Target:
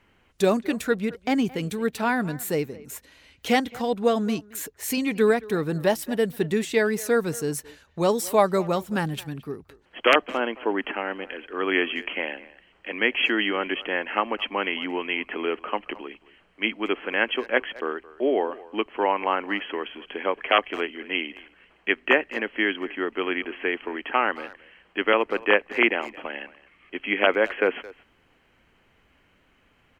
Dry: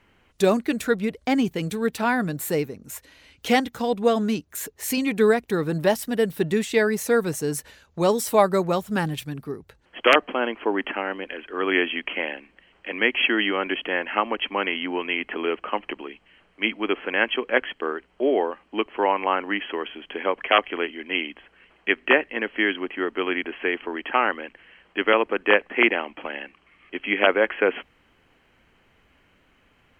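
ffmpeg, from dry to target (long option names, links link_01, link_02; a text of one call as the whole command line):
ffmpeg -i in.wav -filter_complex "[0:a]asplit=2[link_01][link_02];[link_02]adelay=220,highpass=300,lowpass=3400,asoftclip=type=hard:threshold=-12dB,volume=-19dB[link_03];[link_01][link_03]amix=inputs=2:normalize=0,volume=-1.5dB" out.wav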